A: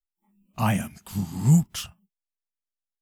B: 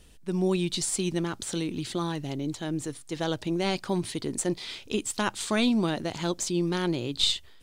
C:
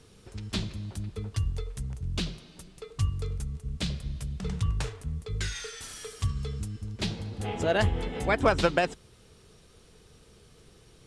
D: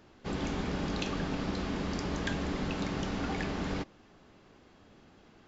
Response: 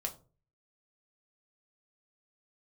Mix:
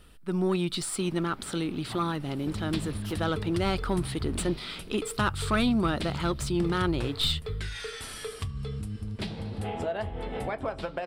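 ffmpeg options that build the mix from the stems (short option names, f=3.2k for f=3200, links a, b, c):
-filter_complex "[0:a]alimiter=limit=-17dB:level=0:latency=1,adelay=1300,volume=-8dB[a];[1:a]equalizer=f=1.3k:t=o:w=0.34:g=12,asoftclip=type=tanh:threshold=-18.5dB,volume=0.5dB,asplit=2[b][c];[2:a]adynamicequalizer=threshold=0.0112:dfrequency=740:dqfactor=0.9:tfrequency=740:tqfactor=0.9:attack=5:release=100:ratio=0.375:range=3:mode=boostabove:tftype=bell,acompressor=threshold=-35dB:ratio=10,asoftclip=type=hard:threshold=-26dB,adelay=2200,volume=1dB,asplit=2[d][e];[e]volume=-4dB[f];[3:a]alimiter=level_in=3dB:limit=-24dB:level=0:latency=1,volume=-3dB,adelay=750,volume=-13.5dB[g];[c]apad=whole_len=190496[h];[a][h]sidechaincompress=threshold=-40dB:ratio=8:attack=16:release=204[i];[4:a]atrim=start_sample=2205[j];[f][j]afir=irnorm=-1:irlink=0[k];[i][b][d][g][k]amix=inputs=5:normalize=0,equalizer=f=6.5k:w=2.5:g=-12.5"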